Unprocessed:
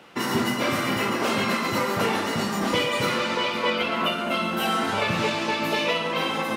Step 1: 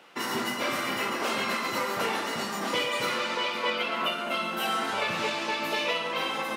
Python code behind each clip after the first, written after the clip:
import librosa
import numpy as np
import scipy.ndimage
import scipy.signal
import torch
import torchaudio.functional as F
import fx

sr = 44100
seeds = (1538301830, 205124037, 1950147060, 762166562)

y = fx.highpass(x, sr, hz=450.0, slope=6)
y = y * librosa.db_to_amplitude(-3.0)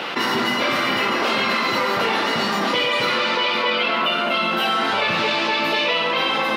y = fx.high_shelf_res(x, sr, hz=5700.0, db=-9.0, q=1.5)
y = fx.env_flatten(y, sr, amount_pct=70)
y = y * librosa.db_to_amplitude(5.5)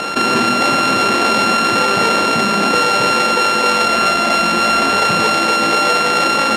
y = np.r_[np.sort(x[:len(x) // 32 * 32].reshape(-1, 32), axis=1).ravel(), x[len(x) // 32 * 32:]]
y = fx.air_absorb(y, sr, metres=71.0)
y = y * librosa.db_to_amplitude(7.5)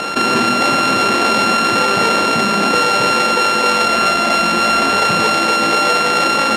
y = x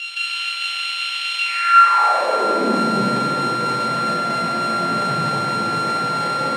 y = fx.filter_sweep_highpass(x, sr, from_hz=2900.0, to_hz=130.0, start_s=1.38, end_s=2.97, q=7.1)
y = fx.room_shoebox(y, sr, seeds[0], volume_m3=150.0, walls='hard', distance_m=0.82)
y = y * librosa.db_to_amplitude(-16.0)